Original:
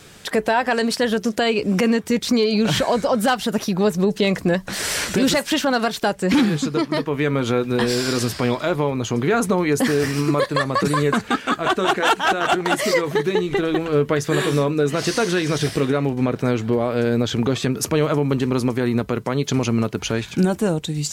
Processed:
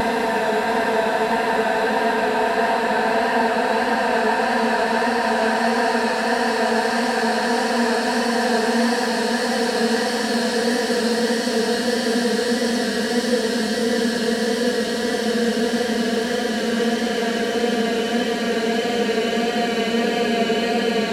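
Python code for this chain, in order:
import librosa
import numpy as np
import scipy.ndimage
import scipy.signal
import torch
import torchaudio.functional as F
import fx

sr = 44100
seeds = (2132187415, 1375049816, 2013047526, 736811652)

y = fx.paulstretch(x, sr, seeds[0], factor=21.0, window_s=1.0, from_s=0.41)
y = fx.vibrato(y, sr, rate_hz=1.6, depth_cents=29.0)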